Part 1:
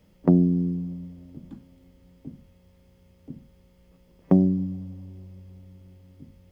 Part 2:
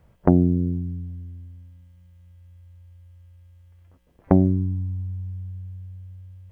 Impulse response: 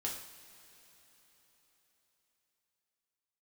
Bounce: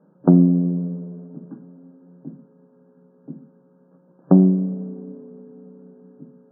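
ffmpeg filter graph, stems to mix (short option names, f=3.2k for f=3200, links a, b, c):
-filter_complex "[0:a]volume=2.5dB,asplit=2[a][b];[b]volume=-7.5dB[c];[1:a]acompressor=threshold=-25dB:ratio=6,aeval=exprs='val(0)*sin(2*PI*340*n/s)':c=same,volume=-7.5dB[d];[2:a]atrim=start_sample=2205[e];[c][e]afir=irnorm=-1:irlink=0[f];[a][d][f]amix=inputs=3:normalize=0,afftfilt=real='re*between(b*sr/4096,130,1700)':imag='im*between(b*sr/4096,130,1700)':win_size=4096:overlap=0.75"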